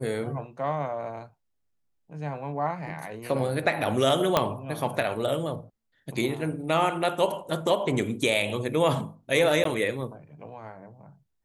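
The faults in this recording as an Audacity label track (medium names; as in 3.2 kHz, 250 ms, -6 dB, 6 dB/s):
4.370000	4.370000	pop -6 dBFS
9.640000	9.650000	dropout 13 ms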